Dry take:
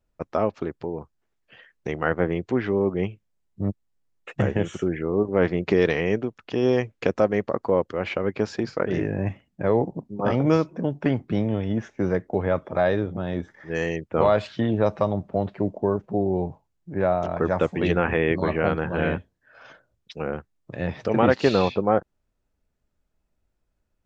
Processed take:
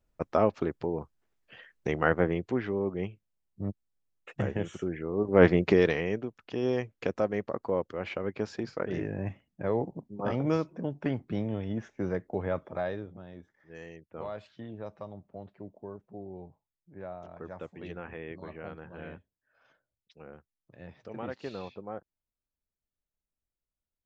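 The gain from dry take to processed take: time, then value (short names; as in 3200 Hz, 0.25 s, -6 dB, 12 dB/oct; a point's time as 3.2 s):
2.05 s -1 dB
2.74 s -8 dB
5.16 s -8 dB
5.44 s +3 dB
6.11 s -8 dB
12.62 s -8 dB
13.34 s -19.5 dB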